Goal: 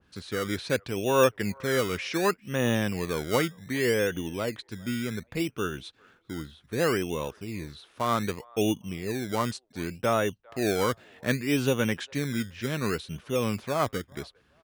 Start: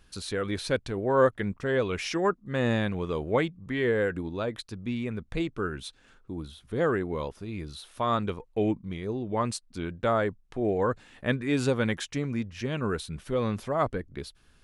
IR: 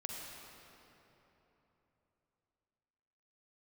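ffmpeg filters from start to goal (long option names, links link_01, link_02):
-filter_complex "[0:a]highpass=88,aemphasis=mode=reproduction:type=75fm,acrossover=split=500[link_01][link_02];[link_01]acrusher=samples=20:mix=1:aa=0.000001:lfo=1:lforange=12:lforate=0.66[link_03];[link_02]asplit=2[link_04][link_05];[link_05]adelay=405,lowpass=frequency=1700:poles=1,volume=-23.5dB,asplit=2[link_06][link_07];[link_07]adelay=405,lowpass=frequency=1700:poles=1,volume=0.29[link_08];[link_04][link_06][link_08]amix=inputs=3:normalize=0[link_09];[link_03][link_09]amix=inputs=2:normalize=0,adynamicequalizer=threshold=0.01:dfrequency=1800:dqfactor=0.7:tfrequency=1800:tqfactor=0.7:attack=5:release=100:ratio=0.375:range=2:mode=boostabove:tftype=highshelf"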